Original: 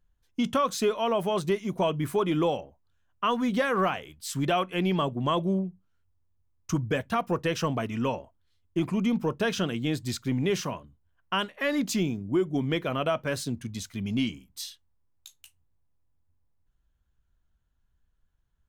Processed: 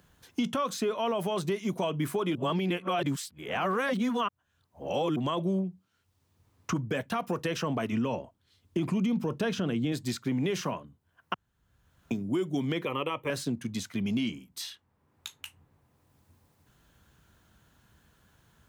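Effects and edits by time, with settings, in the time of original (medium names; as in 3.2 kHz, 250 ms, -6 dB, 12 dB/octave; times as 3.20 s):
2.35–5.16 s: reverse
5.68–6.76 s: treble shelf 6.4 kHz -7.5 dB
7.92–9.92 s: tilt EQ -2 dB/octave
11.34–12.11 s: room tone
12.85–13.30 s: static phaser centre 1 kHz, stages 8
whole clip: high-pass 130 Hz 12 dB/octave; peak limiter -21 dBFS; three bands compressed up and down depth 70%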